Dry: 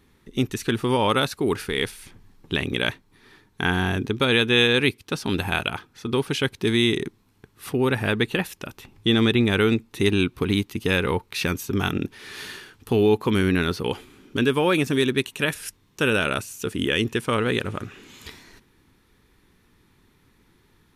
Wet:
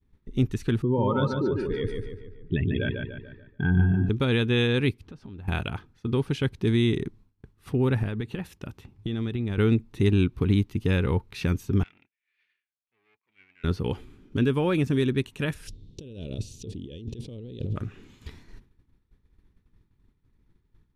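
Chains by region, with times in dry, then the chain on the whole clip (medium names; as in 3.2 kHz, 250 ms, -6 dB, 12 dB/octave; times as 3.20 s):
0.82–4.09 s: spectral contrast enhancement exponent 2.2 + low-pass 8.5 kHz 24 dB/octave + filtered feedback delay 145 ms, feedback 49%, low-pass 4.1 kHz, level -4.5 dB
5.02–5.48 s: companding laws mixed up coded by mu + low-pass 2.2 kHz 6 dB/octave + compression 4:1, threshold -41 dBFS
8.03–9.58 s: high-pass 59 Hz + compression 4:1, threshold -26 dBFS
11.83–13.64 s: valve stage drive 24 dB, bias 0.4 + band-pass filter 2.3 kHz, Q 5
15.67–17.76 s: FFT filter 510 Hz 0 dB, 1.4 kHz -30 dB, 2.4 kHz -13 dB, 3.7 kHz +3 dB, 13 kHz -18 dB + compressor with a negative ratio -36 dBFS
whole clip: RIAA curve playback; expander -38 dBFS; treble shelf 4.3 kHz +8.5 dB; trim -8 dB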